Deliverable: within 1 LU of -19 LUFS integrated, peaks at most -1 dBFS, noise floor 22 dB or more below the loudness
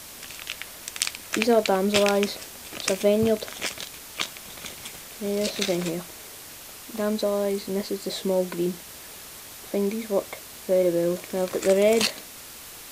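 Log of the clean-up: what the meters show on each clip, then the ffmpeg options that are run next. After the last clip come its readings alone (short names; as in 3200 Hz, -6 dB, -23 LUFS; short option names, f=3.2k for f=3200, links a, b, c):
noise floor -43 dBFS; noise floor target -48 dBFS; loudness -25.5 LUFS; peak -2.5 dBFS; loudness target -19.0 LUFS
-> -af "afftdn=nr=6:nf=-43"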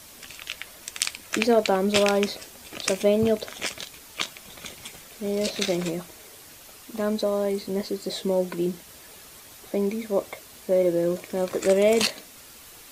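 noise floor -47 dBFS; noise floor target -48 dBFS
-> -af "afftdn=nr=6:nf=-47"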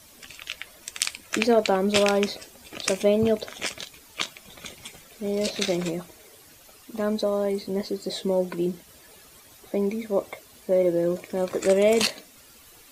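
noise floor -52 dBFS; loudness -25.5 LUFS; peak -2.5 dBFS; loudness target -19.0 LUFS
-> -af "volume=6.5dB,alimiter=limit=-1dB:level=0:latency=1"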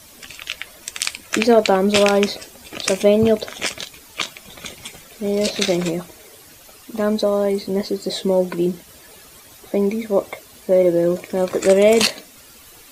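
loudness -19.0 LUFS; peak -1.0 dBFS; noise floor -45 dBFS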